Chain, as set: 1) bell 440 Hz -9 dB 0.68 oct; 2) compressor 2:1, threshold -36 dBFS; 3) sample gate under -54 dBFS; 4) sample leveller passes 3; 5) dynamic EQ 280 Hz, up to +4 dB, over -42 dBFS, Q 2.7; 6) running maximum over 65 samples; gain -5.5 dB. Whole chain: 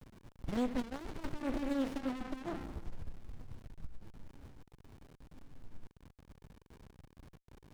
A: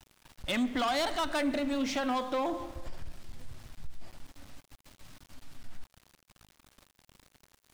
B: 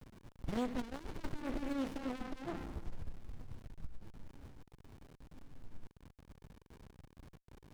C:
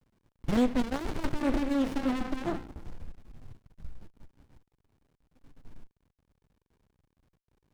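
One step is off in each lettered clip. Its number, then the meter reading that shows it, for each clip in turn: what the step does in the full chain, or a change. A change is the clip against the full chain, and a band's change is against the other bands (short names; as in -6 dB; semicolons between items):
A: 6, crest factor change -7.0 dB; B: 5, 250 Hz band -2.0 dB; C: 2, mean gain reduction 3.0 dB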